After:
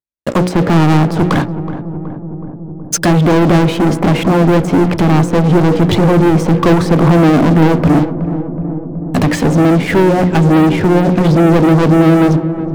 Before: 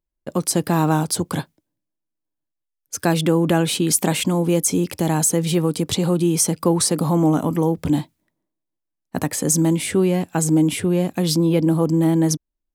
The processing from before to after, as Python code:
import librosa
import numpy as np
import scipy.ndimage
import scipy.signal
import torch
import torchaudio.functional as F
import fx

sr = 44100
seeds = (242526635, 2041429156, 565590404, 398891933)

p1 = scipy.signal.sosfilt(scipy.signal.butter(2, 79.0, 'highpass', fs=sr, output='sos'), x)
p2 = fx.hum_notches(p1, sr, base_hz=60, count=9)
p3 = fx.env_lowpass_down(p2, sr, base_hz=1200.0, full_db=-18.0)
p4 = fx.leveller(p3, sr, passes=5)
y = p4 + fx.echo_filtered(p4, sr, ms=372, feedback_pct=80, hz=910.0, wet_db=-11, dry=0)